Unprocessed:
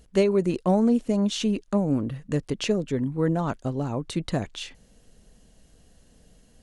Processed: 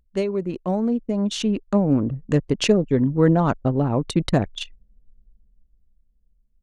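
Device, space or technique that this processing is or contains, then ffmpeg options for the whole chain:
voice memo with heavy noise removal: -af "anlmdn=10,dynaudnorm=f=230:g=13:m=13dB,volume=-3dB"

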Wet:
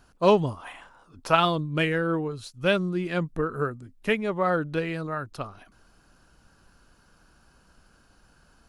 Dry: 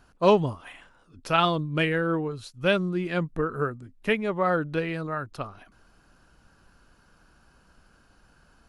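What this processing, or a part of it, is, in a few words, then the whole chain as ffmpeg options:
exciter from parts: -filter_complex "[0:a]asplit=2[a][b];[b]highpass=3.1k,asoftclip=type=tanh:threshold=-40dB,volume=-6.5dB[c];[a][c]amix=inputs=2:normalize=0,asettb=1/sr,asplit=3[d][e][f];[d]atrim=end=0.574[g];[e]atrim=start=0.57:end=1.35,asetpts=PTS-STARTPTS,afade=t=in:d=0.004:c=qsin,afade=t=out:st=0.776:d=0.004:c=qsin,equalizer=f=930:w=1.1:g=9.5[h];[f]atrim=start=1.346[i];[g][h]acrossfade=d=0.004:c1=hsin:c2=qsin[j];[j][i]acrossfade=d=0.004:c1=qsin:c2=hsin"

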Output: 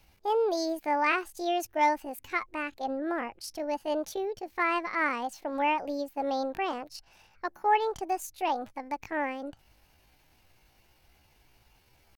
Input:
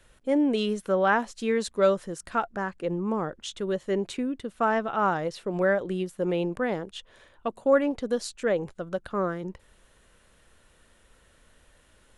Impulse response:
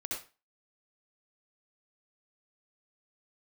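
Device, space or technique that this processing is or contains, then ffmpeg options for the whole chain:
chipmunk voice: -af "asetrate=68011,aresample=44100,atempo=0.64842,volume=-3.5dB"

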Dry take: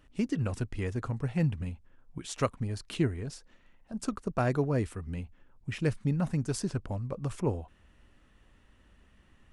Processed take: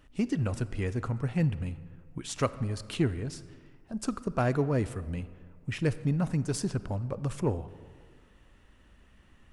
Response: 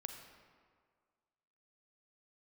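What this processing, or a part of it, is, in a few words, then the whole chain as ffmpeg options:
saturated reverb return: -filter_complex "[0:a]asplit=2[a][b];[1:a]atrim=start_sample=2205[c];[b][c]afir=irnorm=-1:irlink=0,asoftclip=type=tanh:threshold=-30.5dB,volume=-3dB[d];[a][d]amix=inputs=2:normalize=0,volume=-1dB"

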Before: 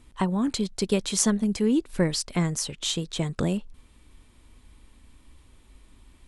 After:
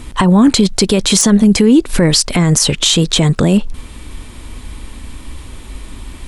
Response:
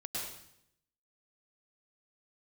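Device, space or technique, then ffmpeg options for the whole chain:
loud club master: -af "acompressor=threshold=-29dB:ratio=1.5,asoftclip=type=hard:threshold=-14dB,alimiter=level_in=24.5dB:limit=-1dB:release=50:level=0:latency=1,volume=-1dB"

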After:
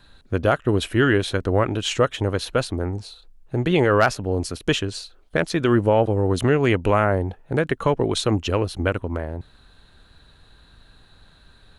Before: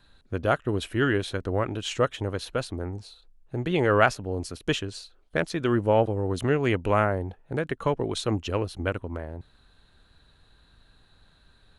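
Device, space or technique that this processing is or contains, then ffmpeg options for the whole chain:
clipper into limiter: -af "asoftclip=type=hard:threshold=-10dB,alimiter=limit=-14.5dB:level=0:latency=1:release=133,volume=7dB"

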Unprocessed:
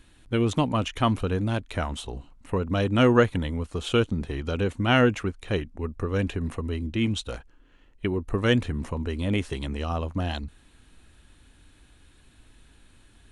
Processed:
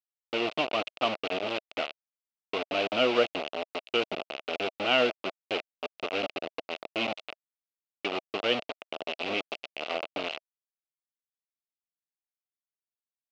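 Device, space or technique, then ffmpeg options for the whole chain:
hand-held game console: -af "acrusher=bits=3:mix=0:aa=0.000001,highpass=430,equalizer=f=640:t=q:w=4:g=7,equalizer=f=970:t=q:w=4:g=-7,equalizer=f=1.7k:t=q:w=4:g=-10,equalizer=f=2.7k:t=q:w=4:g=8,lowpass=f=4.1k:w=0.5412,lowpass=f=4.1k:w=1.3066,volume=-3.5dB"

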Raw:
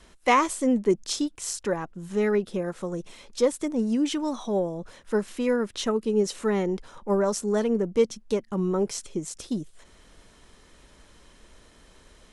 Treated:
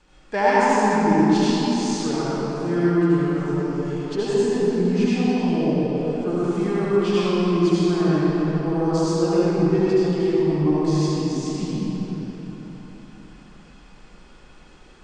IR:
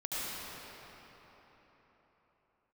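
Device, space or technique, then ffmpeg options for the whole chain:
slowed and reverbed: -filter_complex "[0:a]asetrate=36162,aresample=44100[a];[1:a]atrim=start_sample=2205[b];[a][b]afir=irnorm=-1:irlink=0,highshelf=f=8.3k:g=-9"

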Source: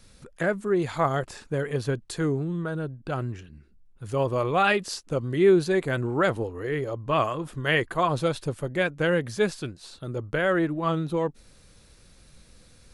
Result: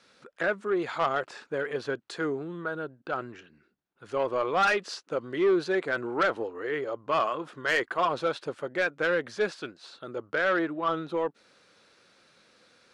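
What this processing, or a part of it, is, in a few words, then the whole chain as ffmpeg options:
intercom: -af "highpass=350,lowpass=4.6k,equalizer=f=1.4k:t=o:w=0.41:g=5,asoftclip=type=tanh:threshold=-17.5dB"

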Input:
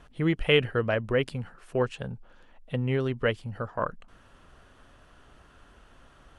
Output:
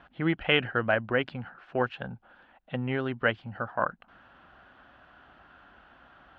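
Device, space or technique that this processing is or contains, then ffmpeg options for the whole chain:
guitar cabinet: -af "highpass=80,equalizer=f=90:t=q:w=4:g=-8,equalizer=f=140:t=q:w=4:g=-6,equalizer=f=440:t=q:w=4:g=-7,equalizer=f=770:t=q:w=4:g=7,equalizer=f=1.5k:t=q:w=4:g=7,lowpass=f=3.7k:w=0.5412,lowpass=f=3.7k:w=1.3066"

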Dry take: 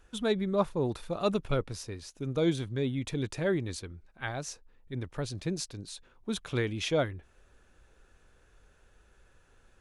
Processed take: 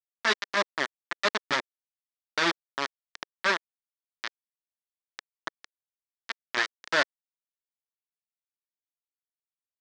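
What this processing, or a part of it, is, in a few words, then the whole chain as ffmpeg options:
hand-held game console: -af "acrusher=bits=3:mix=0:aa=0.000001,highpass=460,equalizer=f=480:t=q:w=4:g=-10,equalizer=f=760:t=q:w=4:g=-8,equalizer=f=1.8k:t=q:w=4:g=7,equalizer=f=2.7k:t=q:w=4:g=-4,lowpass=f=5.4k:w=0.5412,lowpass=f=5.4k:w=1.3066,volume=4dB"

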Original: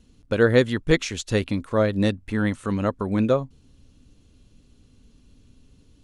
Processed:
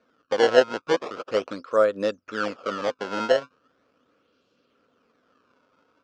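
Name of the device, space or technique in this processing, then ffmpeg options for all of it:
circuit-bent sampling toy: -af "acrusher=samples=21:mix=1:aa=0.000001:lfo=1:lforange=33.6:lforate=0.39,highpass=430,equalizer=f=510:t=q:w=4:g=8,equalizer=f=830:t=q:w=4:g=-6,equalizer=f=1.3k:t=q:w=4:g=10,equalizer=f=2k:t=q:w=4:g=-7,equalizer=f=3.9k:t=q:w=4:g=-5,lowpass=f=5.2k:w=0.5412,lowpass=f=5.2k:w=1.3066,volume=-1dB"

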